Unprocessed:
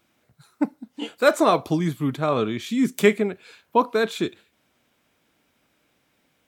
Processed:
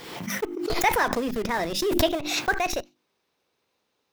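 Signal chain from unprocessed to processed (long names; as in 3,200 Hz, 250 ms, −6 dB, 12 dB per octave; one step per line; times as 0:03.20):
gliding playback speed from 143% → 171%
parametric band 10,000 Hz −5 dB 1.2 octaves
mains-hum notches 50/100/150/200/250/300/350 Hz
dynamic equaliser 2,500 Hz, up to +5 dB, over −39 dBFS, Q 1.8
in parallel at −4.5 dB: comparator with hysteresis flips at −25.5 dBFS
on the sum: background raised ahead of every attack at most 45 dB per second
level −7 dB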